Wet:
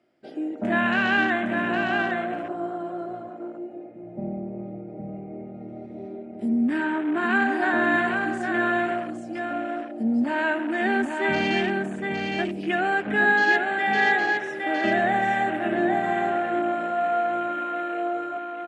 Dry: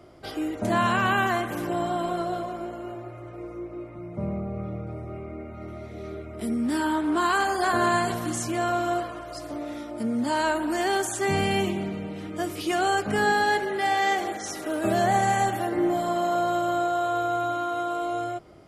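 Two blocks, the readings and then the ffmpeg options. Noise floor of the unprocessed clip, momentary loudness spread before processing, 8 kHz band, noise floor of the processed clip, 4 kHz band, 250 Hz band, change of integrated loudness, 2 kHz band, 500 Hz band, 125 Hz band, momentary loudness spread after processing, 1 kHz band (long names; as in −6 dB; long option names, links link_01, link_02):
−40 dBFS, 15 LU, below −15 dB, −40 dBFS, −1.5 dB, +2.5 dB, +2.0 dB, +6.5 dB, 0.0 dB, −5.0 dB, 16 LU, −0.5 dB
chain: -af "highpass=210,equalizer=frequency=230:width_type=q:width=4:gain=7,equalizer=frequency=460:width_type=q:width=4:gain=-3,equalizer=frequency=1100:width_type=q:width=4:gain=-9,equalizer=frequency=1700:width_type=q:width=4:gain=8,equalizer=frequency=2600:width_type=q:width=4:gain=6,equalizer=frequency=6300:width_type=q:width=4:gain=-5,lowpass=frequency=8900:width=0.5412,lowpass=frequency=8900:width=1.3066,afwtdn=0.0224,aecho=1:1:811:0.596"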